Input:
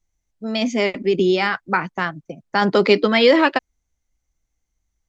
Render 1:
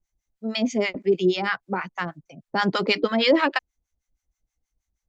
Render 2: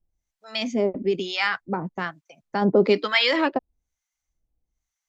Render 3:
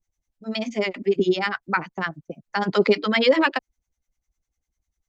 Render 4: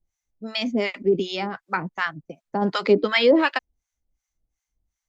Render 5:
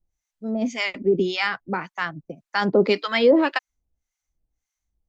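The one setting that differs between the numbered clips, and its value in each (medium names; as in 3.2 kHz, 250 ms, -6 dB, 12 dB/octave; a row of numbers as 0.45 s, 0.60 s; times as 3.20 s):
harmonic tremolo, rate: 6.3 Hz, 1.1 Hz, 10 Hz, 2.7 Hz, 1.8 Hz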